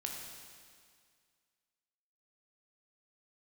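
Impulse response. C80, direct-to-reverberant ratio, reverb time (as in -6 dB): 3.5 dB, 0.0 dB, 2.0 s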